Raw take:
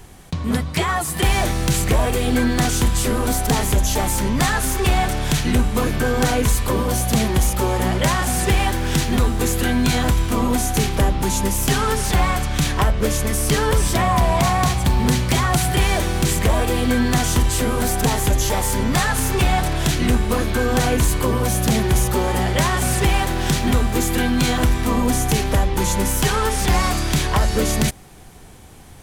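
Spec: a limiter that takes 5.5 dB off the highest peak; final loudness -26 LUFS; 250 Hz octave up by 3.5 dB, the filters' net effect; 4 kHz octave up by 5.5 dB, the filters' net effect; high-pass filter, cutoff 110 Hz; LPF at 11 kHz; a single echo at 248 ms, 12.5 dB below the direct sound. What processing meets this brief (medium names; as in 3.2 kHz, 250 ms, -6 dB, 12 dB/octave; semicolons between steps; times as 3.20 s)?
high-pass 110 Hz; low-pass 11 kHz; peaking EQ 250 Hz +4.5 dB; peaking EQ 4 kHz +7 dB; peak limiter -8.5 dBFS; delay 248 ms -12.5 dB; trim -7 dB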